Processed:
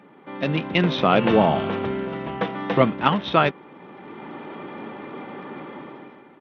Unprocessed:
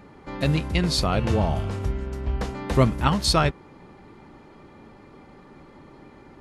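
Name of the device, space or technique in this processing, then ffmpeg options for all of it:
Bluetooth headset: -filter_complex "[0:a]asettb=1/sr,asplit=3[a][b][c];[a]atrim=end=2.074[d];[b]atrim=start=2.07:end=2.82,asetpts=PTS-STARTPTS,afade=t=in:d=0.004:c=qsin,afade=t=out:st=0.746:d=0.004:c=qsin,aecho=1:1:6.1:0.6,atrim=end_sample=33075[e];[c]atrim=start=2.816[f];[d][e]acrossfade=d=0.004:c1=hsin:c2=qsin[g];[g][f]acrossfade=d=0.004:c1=qsin:c2=hsin,asubboost=boost=4:cutoff=74,highpass=f=170:w=0.5412,highpass=f=170:w=1.3066,dynaudnorm=f=140:g=9:m=15dB,aresample=8000,aresample=44100,volume=-1dB" -ar 32000 -c:a sbc -b:a 64k

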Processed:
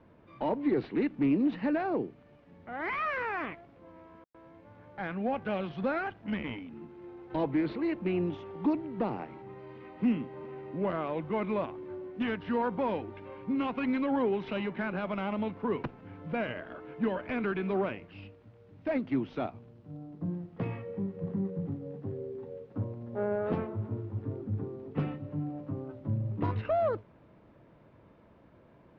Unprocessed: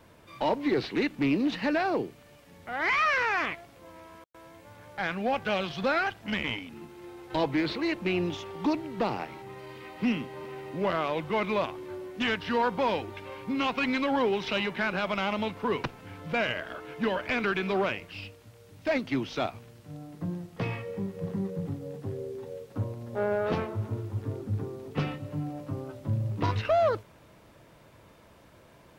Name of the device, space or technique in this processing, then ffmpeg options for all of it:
phone in a pocket: -filter_complex "[0:a]lowpass=3.1k,equalizer=f=240:t=o:w=1.6:g=5,highshelf=f=2.2k:g=-9,asettb=1/sr,asplit=3[a][b][c];[a]atrim=end=19.504[d];[b]atrim=start=19.5:end=20.26,asetpts=PTS-STARTPTS,afade=t=in:d=0.004:c=qsin,afade=t=out:st=0.756:d=0.004:c=qsin,equalizer=f=1.9k:t=o:w=1.2:g=-5.5[e];[c]atrim=start=20.256[f];[d][e]acrossfade=d=0.004:c1=hsin:c2=qsin[g];[g][f]acrossfade=d=0.004:c1=qsin:c2=hsin,volume=-4.5dB"

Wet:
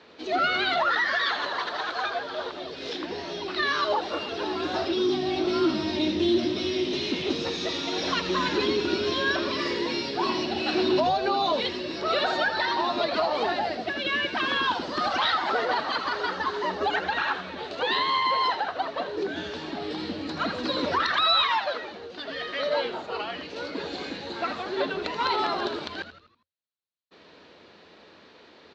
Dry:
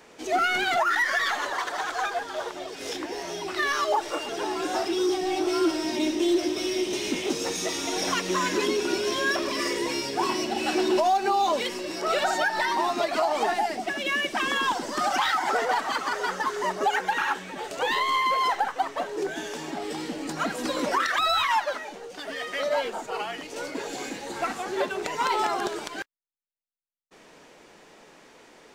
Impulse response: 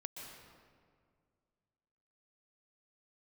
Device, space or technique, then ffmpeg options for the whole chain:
frequency-shifting delay pedal into a guitar cabinet: -filter_complex "[0:a]asplit=6[a][b][c][d][e][f];[b]adelay=81,afreqshift=-110,volume=-11dB[g];[c]adelay=162,afreqshift=-220,volume=-17.6dB[h];[d]adelay=243,afreqshift=-330,volume=-24.1dB[i];[e]adelay=324,afreqshift=-440,volume=-30.7dB[j];[f]adelay=405,afreqshift=-550,volume=-37.2dB[k];[a][g][h][i][j][k]amix=inputs=6:normalize=0,highpass=82,equalizer=f=85:t=q:w=4:g=8,equalizer=f=120:t=q:w=4:g=-8,equalizer=f=800:t=q:w=4:g=-4,equalizer=f=2.1k:t=q:w=4:g=-3,equalizer=f=4.1k:t=q:w=4:g=9,lowpass=f=4.4k:w=0.5412,lowpass=f=4.4k:w=1.3066"

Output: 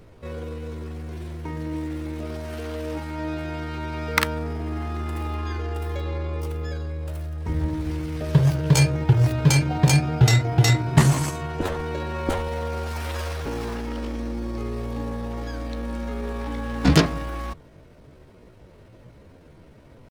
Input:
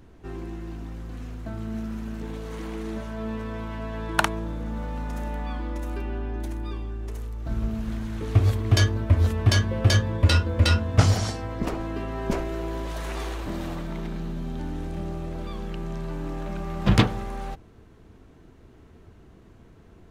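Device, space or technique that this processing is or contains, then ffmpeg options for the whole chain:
chipmunk voice: -af "asetrate=62367,aresample=44100,atempo=0.707107,volume=2dB"

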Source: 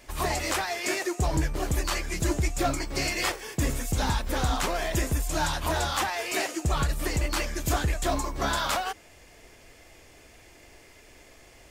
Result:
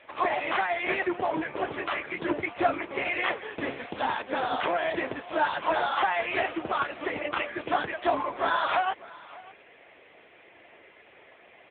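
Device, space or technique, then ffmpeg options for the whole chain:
satellite phone: -filter_complex "[0:a]asplit=3[a][b][c];[a]afade=t=out:st=3.67:d=0.02[d];[b]equalizer=f=1.2k:t=o:w=0.46:g=-2.5,afade=t=in:st=3.67:d=0.02,afade=t=out:st=4.99:d=0.02[e];[c]afade=t=in:st=4.99:d=0.02[f];[d][e][f]amix=inputs=3:normalize=0,highpass=390,lowpass=3.3k,aecho=1:1:596:0.0944,volume=6dB" -ar 8000 -c:a libopencore_amrnb -b:a 6700

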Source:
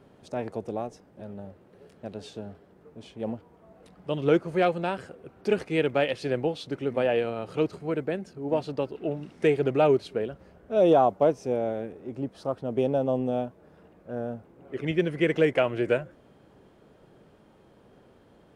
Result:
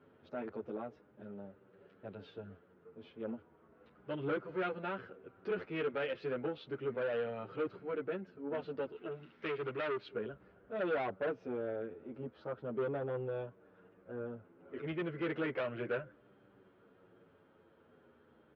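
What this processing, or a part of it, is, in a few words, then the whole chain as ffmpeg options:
barber-pole flanger into a guitar amplifier: -filter_complex "[0:a]asplit=2[a][b];[b]adelay=9,afreqshift=-0.34[c];[a][c]amix=inputs=2:normalize=1,asoftclip=type=tanh:threshold=-26dB,highpass=85,equalizer=f=160:t=q:w=4:g=-4,equalizer=f=430:t=q:w=4:g=3,equalizer=f=730:t=q:w=4:g=-4,equalizer=f=1.4k:t=q:w=4:g=8,lowpass=f=3.4k:w=0.5412,lowpass=f=3.4k:w=1.3066,asettb=1/sr,asplit=3[d][e][f];[d]atrim=end=8.924[g];[e]atrim=start=8.92:end=10.09,asetpts=PTS-STARTPTS,afade=t=in:d=0.004:c=qsin,afade=t=out:st=1.166:d=0.004:c=qsin,tiltshelf=f=1.2k:g=-5.5[h];[f]atrim=start=10.086[i];[g][h]acrossfade=d=0.004:c1=hsin:c2=qsin[j];[j][i]acrossfade=d=0.004:c1=qsin:c2=hsin,volume=-5.5dB"

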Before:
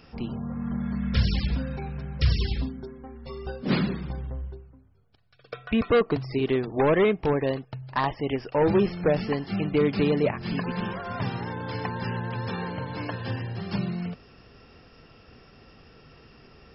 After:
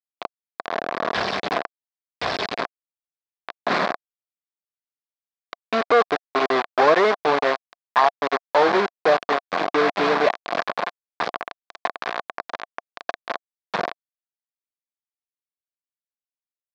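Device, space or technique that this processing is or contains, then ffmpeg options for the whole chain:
hand-held game console: -af "acrusher=bits=3:mix=0:aa=0.000001,highpass=400,equalizer=f=700:t=q:w=4:g=9,equalizer=f=1.1k:t=q:w=4:g=7,equalizer=f=1.6k:t=q:w=4:g=4,equalizer=f=2.9k:t=q:w=4:g=-6,lowpass=f=4.2k:w=0.5412,lowpass=f=4.2k:w=1.3066,volume=3.5dB"

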